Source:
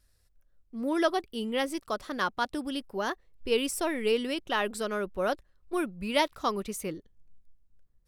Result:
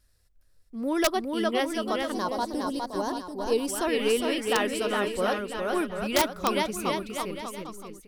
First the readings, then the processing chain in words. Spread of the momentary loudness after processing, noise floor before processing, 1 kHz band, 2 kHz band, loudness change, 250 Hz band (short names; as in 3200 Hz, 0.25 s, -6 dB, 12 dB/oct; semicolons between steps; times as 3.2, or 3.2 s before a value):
8 LU, -68 dBFS, +3.5 dB, +2.0 dB, +3.0 dB, +3.5 dB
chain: bouncing-ball echo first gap 0.41 s, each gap 0.8×, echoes 5; spectral gain 2.12–3.67, 1100–3700 Hz -11 dB; wrapped overs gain 14 dB; gain +1.5 dB